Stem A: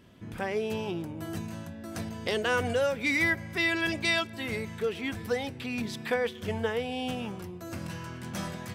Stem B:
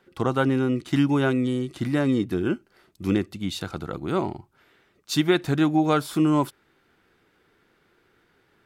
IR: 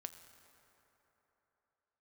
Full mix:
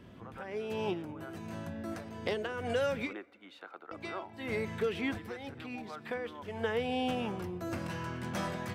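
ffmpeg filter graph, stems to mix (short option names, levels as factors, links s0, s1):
-filter_complex "[0:a]highshelf=f=3400:g=-10,acrossover=split=300|1400[s0][s1][s2];[s0]acompressor=threshold=0.00708:ratio=4[s3];[s1]acompressor=threshold=0.0178:ratio=4[s4];[s2]acompressor=threshold=0.00891:ratio=4[s5];[s3][s4][s5]amix=inputs=3:normalize=0,volume=1.41,asplit=3[s6][s7][s8];[s6]atrim=end=3.13,asetpts=PTS-STARTPTS,afade=t=out:st=3.126:d=0.004:c=hsin[s9];[s7]atrim=start=3.13:end=3.91,asetpts=PTS-STARTPTS,volume=0[s10];[s8]atrim=start=3.91,asetpts=PTS-STARTPTS,afade=t=in:d=0.004:c=hsin[s11];[s9][s10][s11]concat=n=3:v=0:a=1,asplit=2[s12][s13];[s13]volume=0.158[s14];[1:a]highpass=f=260:w=0.5412,highpass=f=260:w=1.3066,acrossover=split=540 2500:gain=0.178 1 0.0631[s15][s16][s17];[s15][s16][s17]amix=inputs=3:normalize=0,volume=0.355,afade=t=in:st=2.37:d=0.65:silence=0.237137,afade=t=out:st=4.12:d=0.24:silence=0.281838,asplit=2[s18][s19];[s19]apad=whole_len=385819[s20];[s12][s20]sidechaincompress=threshold=0.00126:ratio=8:attack=12:release=223[s21];[2:a]atrim=start_sample=2205[s22];[s14][s22]afir=irnorm=-1:irlink=0[s23];[s21][s18][s23]amix=inputs=3:normalize=0"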